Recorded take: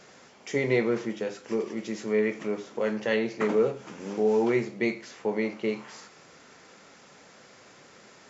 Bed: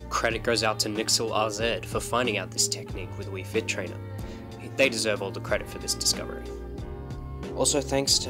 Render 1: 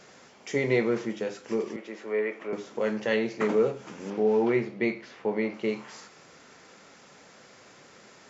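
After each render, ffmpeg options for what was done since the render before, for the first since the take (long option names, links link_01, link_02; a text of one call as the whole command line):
ffmpeg -i in.wav -filter_complex "[0:a]asettb=1/sr,asplit=3[link_01][link_02][link_03];[link_01]atrim=end=1.764[link_04];[link_02]atrim=start=1.76:end=2.53,asetpts=PTS-STARTPTS,afade=type=in:duration=0.004:curve=qsin,afade=type=out:start_time=0.766:duration=0.004:curve=qsin,acrossover=split=340 3000:gain=0.126 1 0.178[link_05][link_06][link_07];[link_05][link_06][link_07]amix=inputs=3:normalize=0[link_08];[link_03]atrim=start=2.526[link_09];[link_04][link_08]acrossfade=duration=0.004:curve1=hsin:curve2=qsin[link_10];[link_10][link_09]acrossfade=duration=0.004:curve1=qsin:curve2=hsin,asettb=1/sr,asplit=3[link_11][link_12][link_13];[link_11]atrim=end=4.104[link_14];[link_12]atrim=start=4.1:end=5.54,asetpts=PTS-STARTPTS,afade=type=in:duration=0.004:curve=qsin,afade=type=out:start_time=1.436:duration=0.004:curve=qsin,lowpass=3800[link_15];[link_13]atrim=start=5.536[link_16];[link_14][link_15]acrossfade=duration=0.004:curve1=hsin:curve2=qsin[link_17];[link_17][link_16]acrossfade=duration=0.004:curve1=qsin:curve2=hsin" out.wav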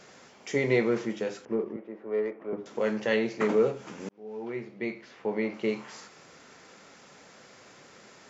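ffmpeg -i in.wav -filter_complex "[0:a]asettb=1/sr,asplit=3[link_01][link_02][link_03];[link_01]atrim=end=1.454[link_04];[link_02]atrim=start=1.45:end=2.66,asetpts=PTS-STARTPTS,afade=type=in:duration=0.004:curve=qsin,afade=type=out:start_time=1.206:duration=0.004:curve=qsin,adynamicsmooth=sensitivity=0.5:basefreq=980[link_05];[link_03]atrim=start=2.656[link_06];[link_04][link_05]acrossfade=duration=0.004:curve1=hsin:curve2=qsin[link_07];[link_07][link_06]acrossfade=duration=0.004:curve1=qsin:curve2=hsin,asplit=2[link_08][link_09];[link_08]atrim=end=4.09,asetpts=PTS-STARTPTS,afade=type=out:start_time=4.086:duration=0.004:curve=hsin[link_10];[link_09]atrim=start=4.09,asetpts=PTS-STARTPTS,afade=type=in:duration=1.53[link_11];[link_10][link_11]concat=n=2:v=0:a=1" out.wav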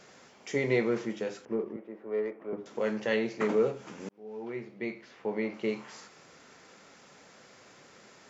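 ffmpeg -i in.wav -af "volume=-2.5dB" out.wav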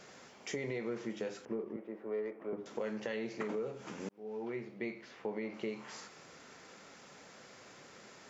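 ffmpeg -i in.wav -af "alimiter=limit=-22.5dB:level=0:latency=1:release=219,acompressor=threshold=-37dB:ratio=2.5" out.wav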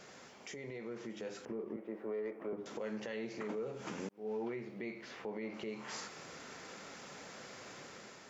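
ffmpeg -i in.wav -af "alimiter=level_in=13dB:limit=-24dB:level=0:latency=1:release=265,volume=-13dB,dynaudnorm=framelen=710:gausssize=3:maxgain=5dB" out.wav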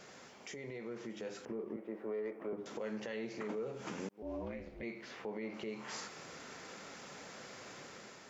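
ffmpeg -i in.wav -filter_complex "[0:a]asettb=1/sr,asplit=3[link_01][link_02][link_03];[link_01]atrim=end=4.224[link_04];[link_02]atrim=start=4.22:end=4.83,asetpts=PTS-STARTPTS,afade=type=in:duration=0.004:curve=qsin,afade=type=out:start_time=0.606:duration=0.004:curve=qsin,aeval=exprs='val(0)*sin(2*PI*150*n/s)':channel_layout=same[link_05];[link_03]atrim=start=4.826[link_06];[link_04][link_05]acrossfade=duration=0.004:curve1=hsin:curve2=qsin[link_07];[link_07][link_06]acrossfade=duration=0.004:curve1=qsin:curve2=hsin" out.wav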